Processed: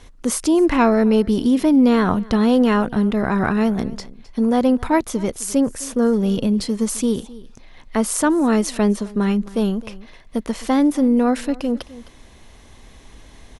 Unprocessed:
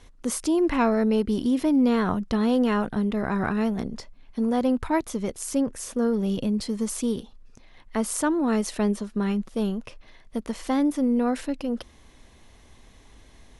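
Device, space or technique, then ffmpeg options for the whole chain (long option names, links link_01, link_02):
ducked delay: -filter_complex "[0:a]asplit=3[link_01][link_02][link_03];[link_02]adelay=261,volume=-6dB[link_04];[link_03]apad=whole_len=610862[link_05];[link_04][link_05]sidechaincompress=threshold=-36dB:ratio=10:attack=16:release=1360[link_06];[link_01][link_06]amix=inputs=2:normalize=0,volume=6.5dB"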